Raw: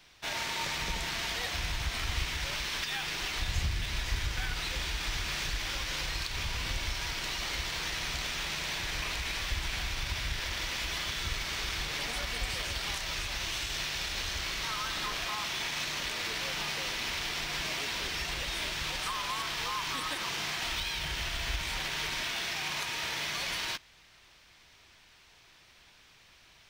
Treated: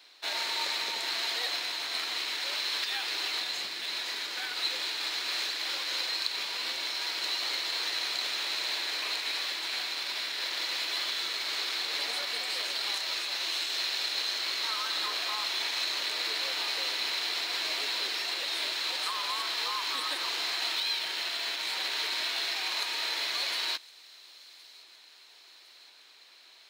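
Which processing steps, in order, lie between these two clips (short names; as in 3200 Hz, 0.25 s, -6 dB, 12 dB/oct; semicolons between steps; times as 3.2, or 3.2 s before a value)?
HPF 320 Hz 24 dB/oct; bell 4100 Hz +12.5 dB 0.2 oct; notch 5900 Hz, Q 15; on a send: thin delay 1.063 s, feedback 56%, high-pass 4400 Hz, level -19 dB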